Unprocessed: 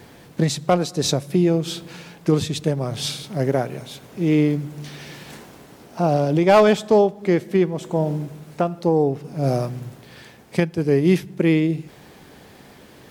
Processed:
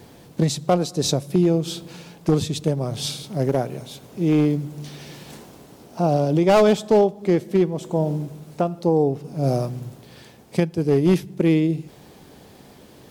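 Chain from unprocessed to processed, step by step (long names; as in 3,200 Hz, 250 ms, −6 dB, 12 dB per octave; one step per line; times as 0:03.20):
wavefolder on the positive side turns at −10.5 dBFS
parametric band 1,800 Hz −6.5 dB 1.3 octaves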